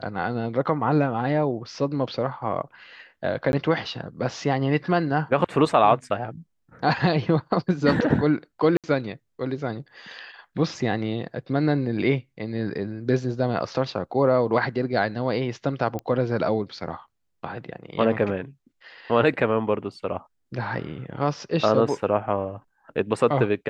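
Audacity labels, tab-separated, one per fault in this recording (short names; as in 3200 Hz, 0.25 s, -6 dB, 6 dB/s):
3.520000	3.530000	gap 11 ms
8.770000	8.840000	gap 67 ms
15.990000	15.990000	pop -18 dBFS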